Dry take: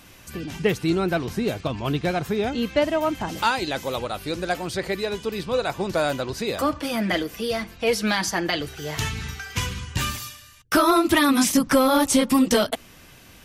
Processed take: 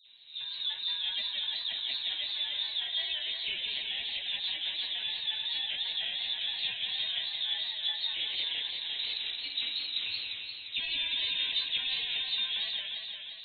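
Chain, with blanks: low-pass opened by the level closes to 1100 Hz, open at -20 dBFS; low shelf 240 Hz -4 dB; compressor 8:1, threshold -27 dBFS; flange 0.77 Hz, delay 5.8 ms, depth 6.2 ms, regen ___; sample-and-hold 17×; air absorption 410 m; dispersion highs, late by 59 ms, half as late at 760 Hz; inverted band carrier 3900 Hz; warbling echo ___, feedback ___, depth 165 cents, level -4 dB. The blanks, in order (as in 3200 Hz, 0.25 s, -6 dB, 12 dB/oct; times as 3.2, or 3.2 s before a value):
+38%, 0.175 s, 72%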